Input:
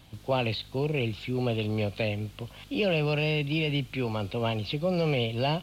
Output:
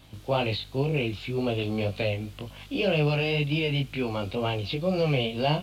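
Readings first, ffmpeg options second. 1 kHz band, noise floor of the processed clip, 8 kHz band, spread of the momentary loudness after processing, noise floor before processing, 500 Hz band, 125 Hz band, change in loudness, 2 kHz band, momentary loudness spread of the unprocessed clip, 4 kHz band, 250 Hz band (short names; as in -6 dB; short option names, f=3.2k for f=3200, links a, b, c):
+1.5 dB, -47 dBFS, n/a, 6 LU, -51 dBFS, +1.5 dB, +1.5 dB, +1.5 dB, +1.5 dB, 5 LU, +1.5 dB, +1.5 dB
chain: -af "flanger=delay=20:depth=2.4:speed=2,volume=4.5dB"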